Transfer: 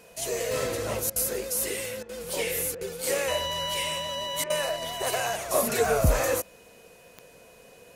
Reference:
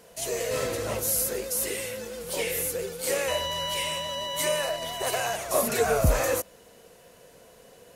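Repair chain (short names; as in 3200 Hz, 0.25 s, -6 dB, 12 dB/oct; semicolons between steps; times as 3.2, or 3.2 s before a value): de-click; notch 2500 Hz, Q 30; interpolate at 1.1/2.03/2.75/4.44, 59 ms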